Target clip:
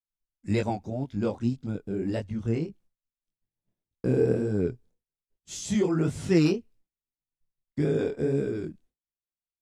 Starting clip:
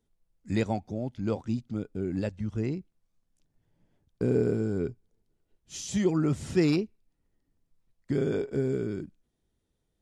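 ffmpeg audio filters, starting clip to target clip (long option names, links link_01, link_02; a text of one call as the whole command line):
ffmpeg -i in.wav -af "agate=range=-33dB:threshold=-54dB:ratio=3:detection=peak,flanger=delay=20:depth=7.6:speed=1.7,asetrate=45938,aresample=44100,volume=4.5dB" out.wav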